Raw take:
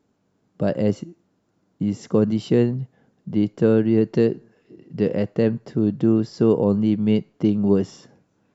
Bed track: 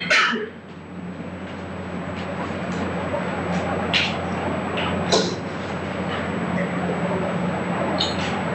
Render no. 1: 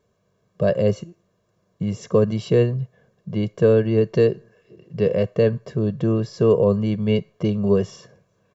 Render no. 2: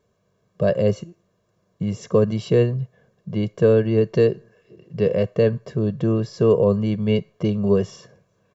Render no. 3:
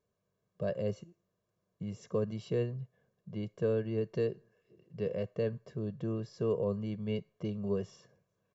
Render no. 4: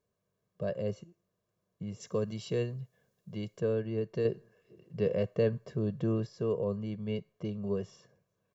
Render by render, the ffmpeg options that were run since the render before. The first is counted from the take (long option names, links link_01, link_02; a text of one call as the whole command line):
ffmpeg -i in.wav -af "bandreject=frequency=4800:width=17,aecho=1:1:1.8:0.84" out.wav
ffmpeg -i in.wav -af anull out.wav
ffmpeg -i in.wav -af "volume=-15dB" out.wav
ffmpeg -i in.wav -filter_complex "[0:a]asettb=1/sr,asplit=3[link_01][link_02][link_03];[link_01]atrim=end=2.004[link_04];[link_02]atrim=start=2:end=3.6,asetpts=PTS-STARTPTS,afade=type=in:duration=0.004:curve=qsin,afade=type=out:start_time=1.596:duration=0.004:curve=qsin,highshelf=frequency=2900:gain=10.5[link_05];[link_03]atrim=start=3.596[link_06];[link_04][link_05]acrossfade=duration=0.004:curve1=hsin:curve2=qsin[link_07];[link_07][link_06]acrossfade=duration=0.004:curve1=qsin:curve2=hsin,asettb=1/sr,asplit=3[link_08][link_09][link_10];[link_08]atrim=end=4.254[link_11];[link_09]atrim=start=4.25:end=6.27,asetpts=PTS-STARTPTS,afade=type=in:duration=0.004:curve=qsin,afade=type=out:start_time=2.016:duration=0.004:curve=qsin,acontrast=26[link_12];[link_10]atrim=start=6.266[link_13];[link_11][link_12]acrossfade=duration=0.004:curve1=hsin:curve2=qsin[link_14];[link_14][link_13]acrossfade=duration=0.004:curve1=qsin:curve2=hsin" out.wav